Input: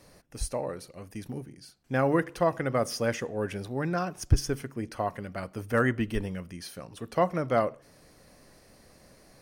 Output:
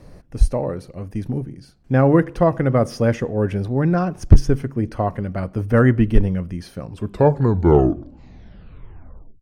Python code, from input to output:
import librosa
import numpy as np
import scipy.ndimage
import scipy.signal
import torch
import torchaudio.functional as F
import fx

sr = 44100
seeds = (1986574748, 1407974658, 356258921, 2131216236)

y = fx.tape_stop_end(x, sr, length_s=2.61)
y = fx.tilt_eq(y, sr, slope=-3.0)
y = np.clip(10.0 ** (8.0 / 20.0) * y, -1.0, 1.0) / 10.0 ** (8.0 / 20.0)
y = F.gain(torch.from_numpy(y), 6.0).numpy()